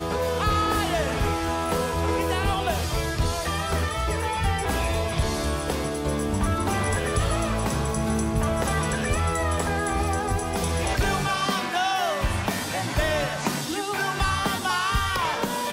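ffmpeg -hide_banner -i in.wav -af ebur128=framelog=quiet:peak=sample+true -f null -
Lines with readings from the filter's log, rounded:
Integrated loudness:
  I:         -25.1 LUFS
  Threshold: -35.1 LUFS
Loudness range:
  LRA:         1.1 LU
  Threshold: -45.3 LUFS
  LRA low:   -25.9 LUFS
  LRA high:  -24.8 LUFS
Sample peak:
  Peak:      -10.7 dBFS
True peak:
  Peak:      -10.7 dBFS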